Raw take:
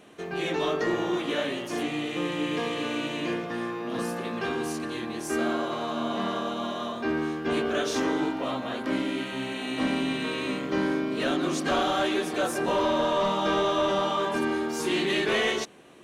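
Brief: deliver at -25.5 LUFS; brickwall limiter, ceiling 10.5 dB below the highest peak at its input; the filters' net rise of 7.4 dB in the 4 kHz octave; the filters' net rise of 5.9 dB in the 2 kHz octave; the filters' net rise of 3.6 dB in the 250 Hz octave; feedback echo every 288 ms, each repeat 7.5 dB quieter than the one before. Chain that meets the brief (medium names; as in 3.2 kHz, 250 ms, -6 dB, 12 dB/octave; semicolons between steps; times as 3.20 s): peaking EQ 250 Hz +4.5 dB; peaking EQ 2 kHz +5.5 dB; peaking EQ 4 kHz +7.5 dB; peak limiter -22 dBFS; feedback delay 288 ms, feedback 42%, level -7.5 dB; trim +3.5 dB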